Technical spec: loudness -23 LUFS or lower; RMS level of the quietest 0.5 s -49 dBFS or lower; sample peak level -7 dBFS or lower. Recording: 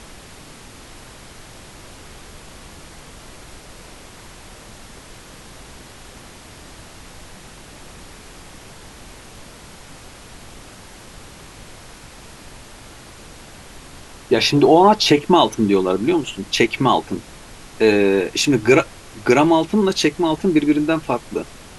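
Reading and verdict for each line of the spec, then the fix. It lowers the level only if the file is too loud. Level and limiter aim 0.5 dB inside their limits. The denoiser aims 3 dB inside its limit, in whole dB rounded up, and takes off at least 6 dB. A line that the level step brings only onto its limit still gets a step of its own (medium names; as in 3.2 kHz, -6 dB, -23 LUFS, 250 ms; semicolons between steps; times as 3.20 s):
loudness -17.0 LUFS: fail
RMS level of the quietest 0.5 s -41 dBFS: fail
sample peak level -1.5 dBFS: fail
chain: noise reduction 6 dB, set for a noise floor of -41 dBFS; trim -6.5 dB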